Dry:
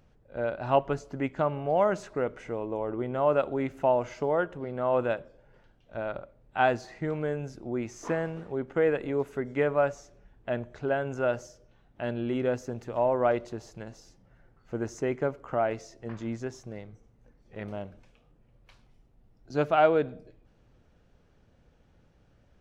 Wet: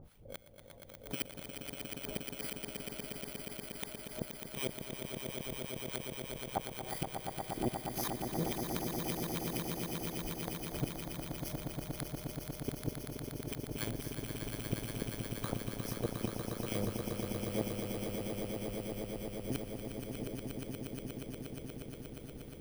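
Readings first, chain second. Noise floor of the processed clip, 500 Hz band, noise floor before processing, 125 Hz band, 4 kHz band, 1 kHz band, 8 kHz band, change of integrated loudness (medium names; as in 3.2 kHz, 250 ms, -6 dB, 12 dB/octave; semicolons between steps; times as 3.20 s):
-51 dBFS, -14.5 dB, -63 dBFS, -3.0 dB, +4.5 dB, -14.0 dB, no reading, -10.5 dB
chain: bit-reversed sample order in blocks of 16 samples; compression 6:1, threshold -28 dBFS, peak gain reduction 11.5 dB; harmonic tremolo 3.8 Hz, depth 100%, crossover 950 Hz; inverted gate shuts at -30 dBFS, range -39 dB; echo with a slow build-up 119 ms, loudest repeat 8, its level -6.5 dB; trim +9 dB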